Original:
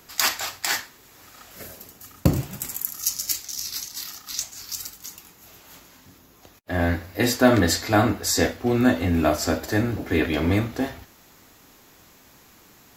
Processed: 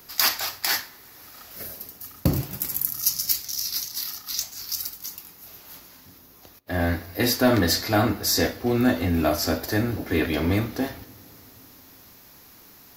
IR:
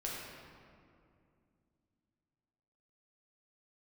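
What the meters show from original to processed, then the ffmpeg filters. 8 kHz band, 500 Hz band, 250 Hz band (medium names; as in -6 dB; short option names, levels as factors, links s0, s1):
-1.0 dB, -2.0 dB, -1.5 dB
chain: -filter_complex "[0:a]acontrast=74,aexciter=amount=1.4:drive=4.5:freq=4300,asplit=2[s0][s1];[1:a]atrim=start_sample=2205,asetrate=35721,aresample=44100[s2];[s1][s2]afir=irnorm=-1:irlink=0,volume=0.0708[s3];[s0][s3]amix=inputs=2:normalize=0,volume=0.398"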